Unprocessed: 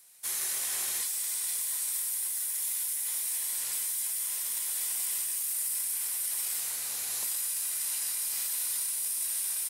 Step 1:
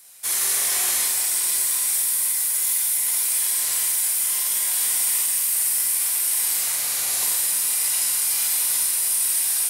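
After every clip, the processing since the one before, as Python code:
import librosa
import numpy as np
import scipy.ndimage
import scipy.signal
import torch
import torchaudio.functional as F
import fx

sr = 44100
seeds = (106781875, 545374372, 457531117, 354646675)

y = fx.doubler(x, sr, ms=47.0, db=-4.5)
y = fx.room_shoebox(y, sr, seeds[0], volume_m3=180.0, walls='hard', distance_m=0.42)
y = F.gain(torch.from_numpy(y), 8.0).numpy()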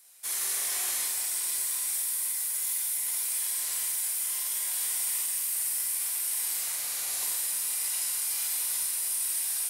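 y = fx.low_shelf(x, sr, hz=190.0, db=-6.5)
y = F.gain(torch.from_numpy(y), -8.5).numpy()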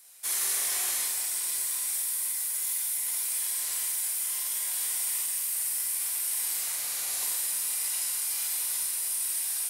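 y = fx.rider(x, sr, range_db=10, speed_s=2.0)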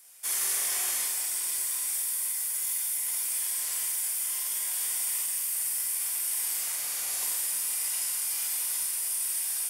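y = fx.notch(x, sr, hz=4000.0, q=10.0)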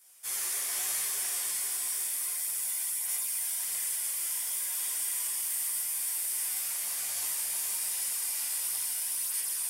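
y = fx.echo_diffused(x, sr, ms=484, feedback_pct=48, wet_db=-3.0)
y = fx.chorus_voices(y, sr, voices=2, hz=0.8, base_ms=13, depth_ms=3.9, mix_pct=55)
y = F.gain(torch.from_numpy(y), -1.0).numpy()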